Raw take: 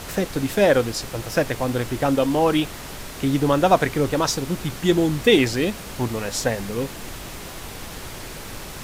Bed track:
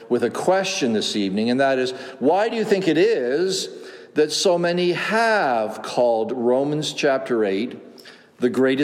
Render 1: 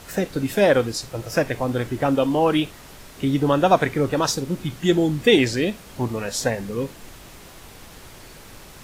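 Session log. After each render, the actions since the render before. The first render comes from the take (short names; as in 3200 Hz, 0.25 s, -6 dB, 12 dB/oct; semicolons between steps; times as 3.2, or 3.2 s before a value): noise print and reduce 8 dB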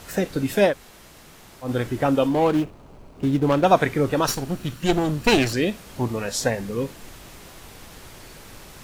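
0.7–1.66 room tone, crossfade 0.10 s; 2.28–3.65 median filter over 25 samples; 4.27–5.53 minimum comb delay 0.7 ms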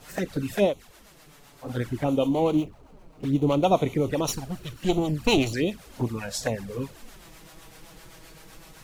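harmonic tremolo 7.8 Hz, depth 50%, crossover 530 Hz; envelope flanger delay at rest 8.3 ms, full sweep at -20 dBFS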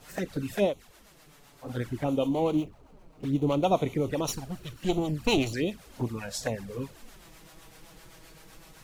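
gain -3.5 dB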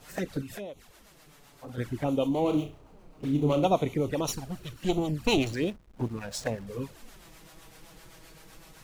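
0.41–1.78 compressor 4:1, threshold -38 dBFS; 2.41–3.67 flutter echo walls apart 5.8 m, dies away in 0.32 s; 5.44–6.67 backlash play -39 dBFS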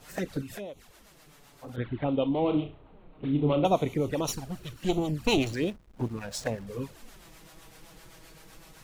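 1.76–3.65 steep low-pass 3900 Hz 72 dB/oct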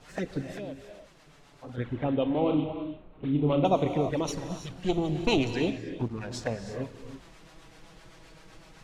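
air absorption 68 m; non-linear reverb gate 0.36 s rising, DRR 8 dB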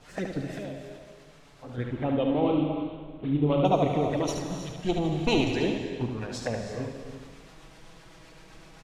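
echo 73 ms -5.5 dB; plate-style reverb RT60 1.6 s, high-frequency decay 1×, pre-delay 0.105 s, DRR 9 dB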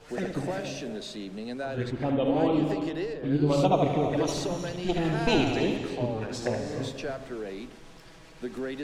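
add bed track -16 dB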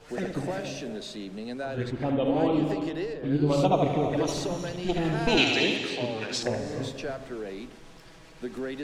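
5.37–6.43 weighting filter D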